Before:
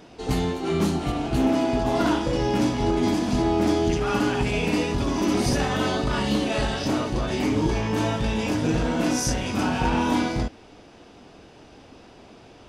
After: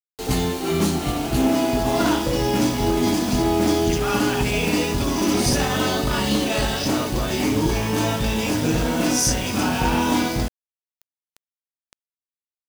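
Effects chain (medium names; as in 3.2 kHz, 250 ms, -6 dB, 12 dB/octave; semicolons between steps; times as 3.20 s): treble shelf 4.6 kHz +8.5 dB; bit crusher 6-bit; trim +2 dB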